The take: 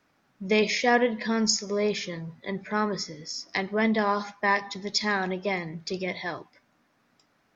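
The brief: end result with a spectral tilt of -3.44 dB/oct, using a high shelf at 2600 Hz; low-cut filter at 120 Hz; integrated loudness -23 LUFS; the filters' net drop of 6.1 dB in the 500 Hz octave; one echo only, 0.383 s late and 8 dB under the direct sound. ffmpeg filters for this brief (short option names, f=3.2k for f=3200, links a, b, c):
-af "highpass=120,equalizer=f=500:t=o:g=-7.5,highshelf=f=2.6k:g=-3,aecho=1:1:383:0.398,volume=6dB"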